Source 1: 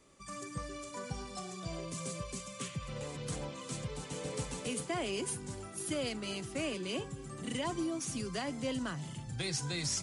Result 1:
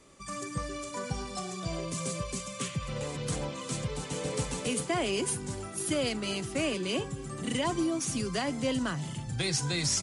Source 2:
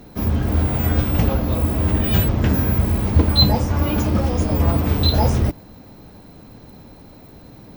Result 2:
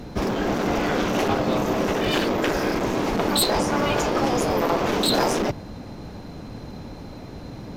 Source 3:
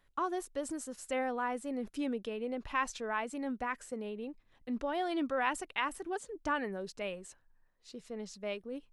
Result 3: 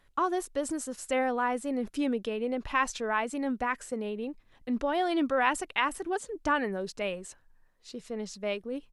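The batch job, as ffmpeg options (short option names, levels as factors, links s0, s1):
-af "asoftclip=type=hard:threshold=0.178,afftfilt=real='re*lt(hypot(re,im),0.398)':imag='im*lt(hypot(re,im),0.398)':win_size=1024:overlap=0.75,aresample=32000,aresample=44100,volume=2"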